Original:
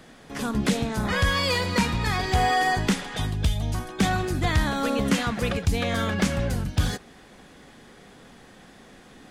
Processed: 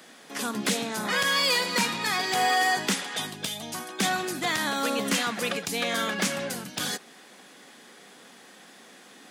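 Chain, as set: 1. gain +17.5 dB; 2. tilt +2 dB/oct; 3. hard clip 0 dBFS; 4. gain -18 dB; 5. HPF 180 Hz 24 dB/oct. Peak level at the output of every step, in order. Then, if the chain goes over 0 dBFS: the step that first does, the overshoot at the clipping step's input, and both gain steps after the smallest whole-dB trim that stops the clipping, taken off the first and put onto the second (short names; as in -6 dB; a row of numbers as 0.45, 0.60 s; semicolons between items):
+7.5, +8.0, 0.0, -18.0, -12.0 dBFS; step 1, 8.0 dB; step 1 +9.5 dB, step 4 -10 dB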